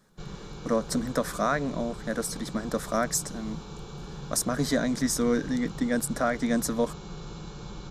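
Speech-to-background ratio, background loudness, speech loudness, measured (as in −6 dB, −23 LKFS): 13.0 dB, −41.5 LKFS, −28.5 LKFS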